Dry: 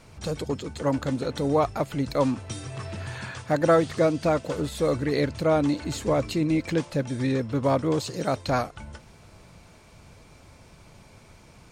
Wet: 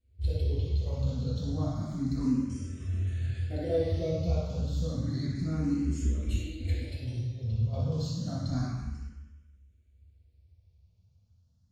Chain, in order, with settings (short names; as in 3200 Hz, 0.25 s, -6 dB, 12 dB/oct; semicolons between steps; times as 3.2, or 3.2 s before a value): gate -41 dBFS, range -19 dB; passive tone stack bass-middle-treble 10-0-1; 6.04–7.73 negative-ratio compressor -47 dBFS, ratio -0.5; reverb RT60 1.1 s, pre-delay 3 ms, DRR -11 dB; endless phaser +0.3 Hz